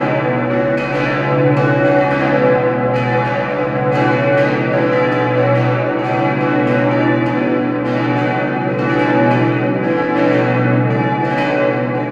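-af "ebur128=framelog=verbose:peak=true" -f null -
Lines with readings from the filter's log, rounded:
Integrated loudness:
  I:         -14.9 LUFS
  Threshold: -24.9 LUFS
Loudness range:
  LRA:         1.0 LU
  Threshold: -34.9 LUFS
  LRA low:   -15.4 LUFS
  LRA high:  -14.5 LUFS
True peak:
  Peak:       -1.4 dBFS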